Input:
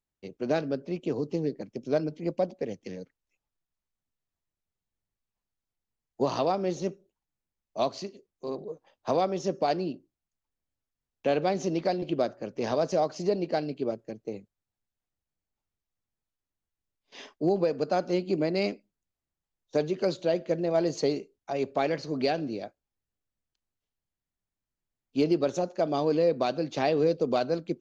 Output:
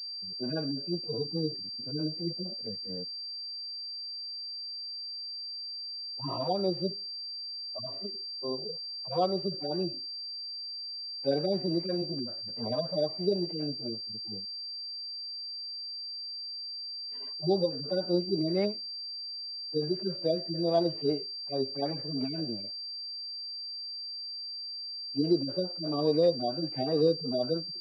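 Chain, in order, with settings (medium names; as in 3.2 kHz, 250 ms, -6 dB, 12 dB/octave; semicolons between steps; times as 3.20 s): harmonic-percussive separation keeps harmonic; vibrato 2.9 Hz 41 cents; class-D stage that switches slowly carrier 4.7 kHz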